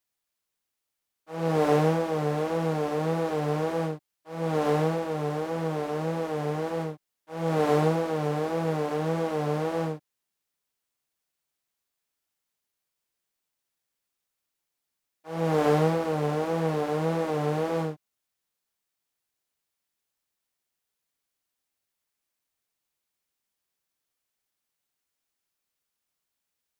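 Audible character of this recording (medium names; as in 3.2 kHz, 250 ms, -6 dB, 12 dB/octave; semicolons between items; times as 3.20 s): noise floor -84 dBFS; spectral tilt -5.0 dB/octave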